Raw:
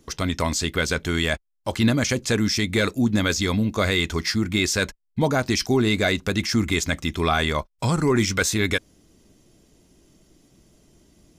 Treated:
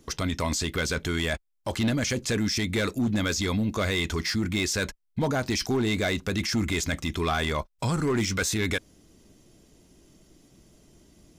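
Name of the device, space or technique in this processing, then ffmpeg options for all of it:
clipper into limiter: -af "asoftclip=type=hard:threshold=0.168,alimiter=limit=0.1:level=0:latency=1:release=10"

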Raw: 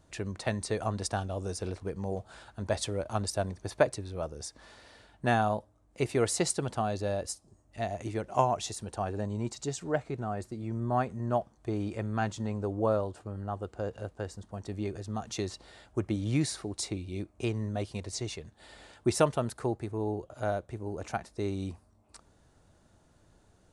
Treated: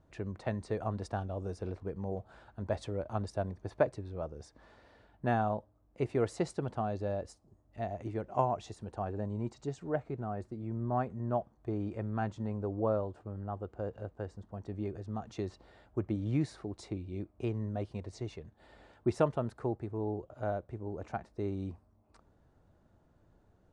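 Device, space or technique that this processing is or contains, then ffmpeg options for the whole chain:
through cloth: -af "lowpass=9000,highshelf=f=2700:g=-17,volume=0.75"

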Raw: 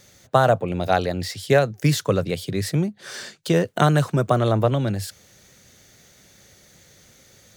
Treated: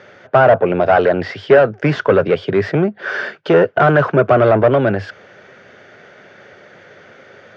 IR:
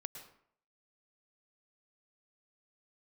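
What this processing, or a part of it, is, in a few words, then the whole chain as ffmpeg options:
overdrive pedal into a guitar cabinet: -filter_complex "[0:a]asplit=2[s0][s1];[s1]highpass=f=720:p=1,volume=17.8,asoftclip=type=tanh:threshold=0.75[s2];[s0][s2]amix=inputs=2:normalize=0,lowpass=f=1200:p=1,volume=0.501,highpass=87,equalizer=f=100:t=q:w=4:g=3,equalizer=f=410:t=q:w=4:g=6,equalizer=f=630:t=q:w=4:g=5,equalizer=f=1500:t=q:w=4:g=8,equalizer=f=4000:t=q:w=4:g=-10,lowpass=f=4200:w=0.5412,lowpass=f=4200:w=1.3066,volume=0.841"

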